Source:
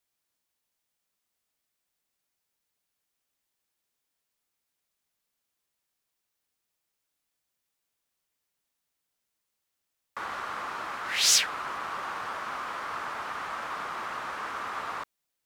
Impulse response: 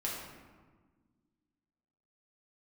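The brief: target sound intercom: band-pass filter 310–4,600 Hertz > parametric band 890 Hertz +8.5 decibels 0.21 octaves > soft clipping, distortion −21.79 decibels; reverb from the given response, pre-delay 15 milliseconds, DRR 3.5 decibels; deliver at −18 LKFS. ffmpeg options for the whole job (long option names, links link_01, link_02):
-filter_complex "[0:a]asplit=2[link_01][link_02];[1:a]atrim=start_sample=2205,adelay=15[link_03];[link_02][link_03]afir=irnorm=-1:irlink=0,volume=-7dB[link_04];[link_01][link_04]amix=inputs=2:normalize=0,highpass=310,lowpass=4600,equalizer=frequency=890:width_type=o:width=0.21:gain=8.5,asoftclip=threshold=-17.5dB,volume=13dB"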